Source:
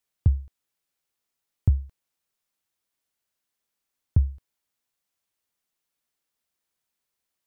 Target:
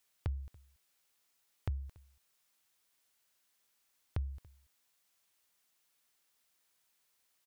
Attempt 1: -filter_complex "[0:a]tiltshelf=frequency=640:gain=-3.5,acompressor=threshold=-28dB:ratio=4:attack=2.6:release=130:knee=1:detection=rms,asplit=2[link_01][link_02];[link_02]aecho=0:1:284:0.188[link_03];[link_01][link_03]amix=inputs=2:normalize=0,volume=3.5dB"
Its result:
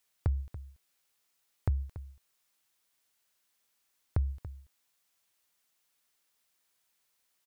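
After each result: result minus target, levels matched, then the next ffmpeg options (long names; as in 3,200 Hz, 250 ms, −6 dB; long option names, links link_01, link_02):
downward compressor: peak gain reduction −7 dB; echo-to-direct +10 dB
-filter_complex "[0:a]tiltshelf=frequency=640:gain=-3.5,acompressor=threshold=-37.5dB:ratio=4:attack=2.6:release=130:knee=1:detection=rms,asplit=2[link_01][link_02];[link_02]aecho=0:1:284:0.188[link_03];[link_01][link_03]amix=inputs=2:normalize=0,volume=3.5dB"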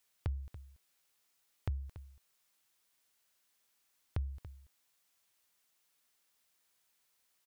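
echo-to-direct +10 dB
-filter_complex "[0:a]tiltshelf=frequency=640:gain=-3.5,acompressor=threshold=-37.5dB:ratio=4:attack=2.6:release=130:knee=1:detection=rms,asplit=2[link_01][link_02];[link_02]aecho=0:1:284:0.0596[link_03];[link_01][link_03]amix=inputs=2:normalize=0,volume=3.5dB"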